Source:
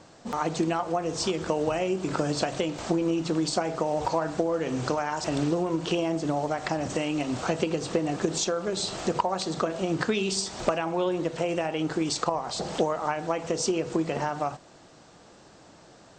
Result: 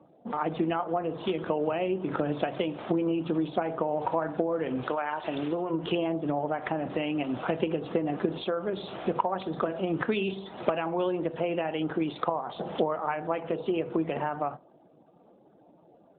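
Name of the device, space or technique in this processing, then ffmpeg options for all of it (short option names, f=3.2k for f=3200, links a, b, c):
mobile call with aggressive noise cancelling: -filter_complex "[0:a]asplit=3[a][b][c];[a]afade=t=out:st=4.81:d=0.02[d];[b]aemphasis=mode=production:type=bsi,afade=t=in:st=4.81:d=0.02,afade=t=out:st=5.69:d=0.02[e];[c]afade=t=in:st=5.69:d=0.02[f];[d][e][f]amix=inputs=3:normalize=0,asplit=3[g][h][i];[g]afade=t=out:st=13.02:d=0.02[j];[h]bandreject=f=60:t=h:w=6,bandreject=f=120:t=h:w=6,bandreject=f=180:t=h:w=6,bandreject=f=240:t=h:w=6,bandreject=f=300:t=h:w=6,bandreject=f=360:t=h:w=6,bandreject=f=420:t=h:w=6,bandreject=f=480:t=h:w=6,bandreject=f=540:t=h:w=6,bandreject=f=600:t=h:w=6,afade=t=in:st=13.02:d=0.02,afade=t=out:st=13.69:d=0.02[k];[i]afade=t=in:st=13.69:d=0.02[l];[j][k][l]amix=inputs=3:normalize=0,highpass=140,afftdn=nr=29:nf=-49,volume=-1dB" -ar 8000 -c:a libopencore_amrnb -b:a 12200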